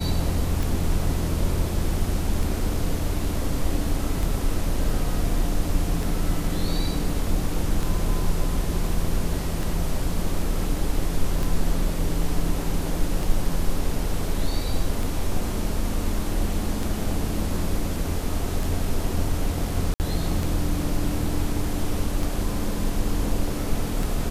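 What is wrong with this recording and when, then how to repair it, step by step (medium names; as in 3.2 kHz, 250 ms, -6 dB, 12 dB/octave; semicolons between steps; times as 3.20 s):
tick 33 1/3 rpm
19.94–20.00 s: dropout 59 ms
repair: de-click; interpolate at 19.94 s, 59 ms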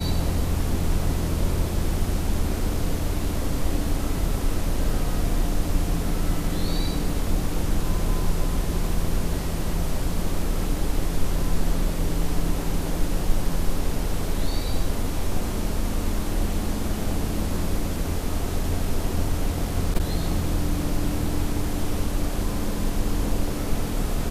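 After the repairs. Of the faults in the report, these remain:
nothing left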